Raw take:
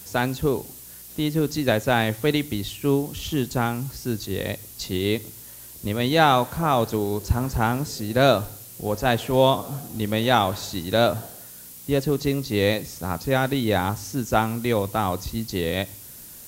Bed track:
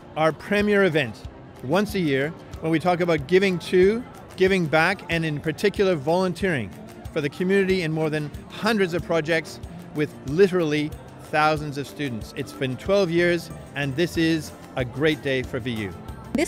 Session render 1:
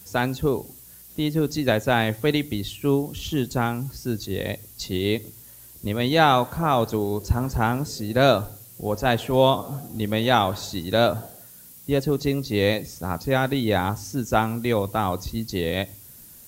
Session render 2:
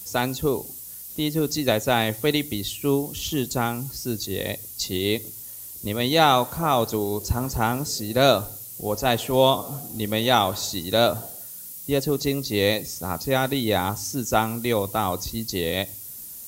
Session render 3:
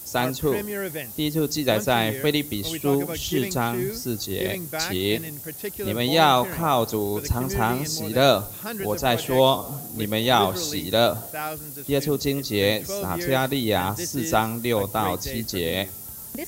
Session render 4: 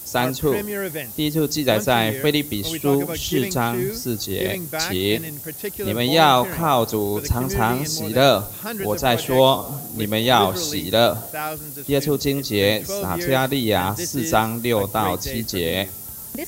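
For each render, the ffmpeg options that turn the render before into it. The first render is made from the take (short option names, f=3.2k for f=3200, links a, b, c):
-af "afftdn=nr=6:nf=-43"
-af "bass=f=250:g=-3,treble=f=4k:g=8,bandreject=f=1.6k:w=9.9"
-filter_complex "[1:a]volume=-11.5dB[a];[0:a][a]amix=inputs=2:normalize=0"
-af "volume=3dB,alimiter=limit=-2dB:level=0:latency=1"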